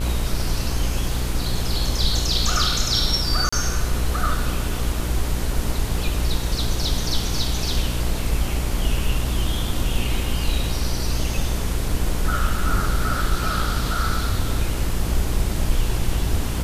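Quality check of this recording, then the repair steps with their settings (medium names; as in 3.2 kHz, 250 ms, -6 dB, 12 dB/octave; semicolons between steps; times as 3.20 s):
buzz 60 Hz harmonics 32 -26 dBFS
3.49–3.52 s: dropout 35 ms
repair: de-hum 60 Hz, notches 32; interpolate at 3.49 s, 35 ms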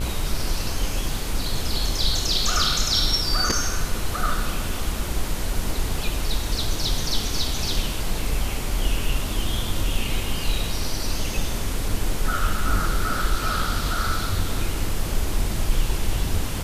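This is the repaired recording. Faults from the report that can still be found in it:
nothing left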